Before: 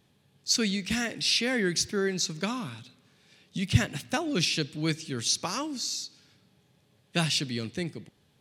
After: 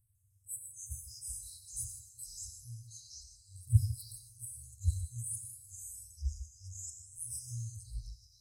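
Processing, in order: FFT band-reject 120–7800 Hz; echoes that change speed 0.151 s, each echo -4 st, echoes 3, each echo -6 dB; non-linear reverb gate 0.19 s flat, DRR 5 dB

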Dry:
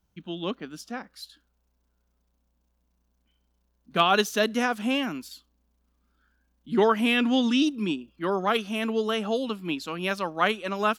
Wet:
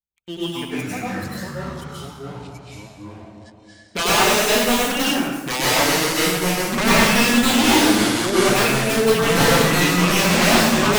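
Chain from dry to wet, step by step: random spectral dropouts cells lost 27%; gate -52 dBFS, range -13 dB; bell 4800 Hz -14.5 dB 0.45 oct; notches 50/100/150/200/250 Hz; sample leveller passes 3; wrapped overs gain 10 dB; high shelf 3700 Hz +9 dB; plate-style reverb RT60 1.1 s, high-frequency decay 0.65×, pre-delay 85 ms, DRR -7.5 dB; echoes that change speed 0.183 s, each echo -5 st, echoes 3; slew limiter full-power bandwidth 1900 Hz; gain -9 dB

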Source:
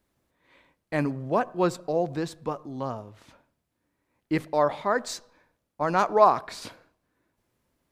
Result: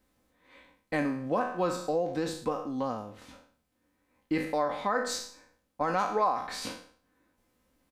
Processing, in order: spectral trails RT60 0.47 s; comb 3.9 ms, depth 51%; compressor 3:1, threshold -27 dBFS, peak gain reduction 12.5 dB

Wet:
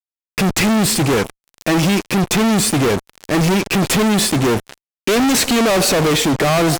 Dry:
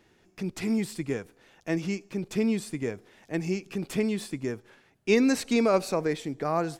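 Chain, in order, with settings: fuzz box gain 50 dB, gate -48 dBFS; wow and flutter 17 cents

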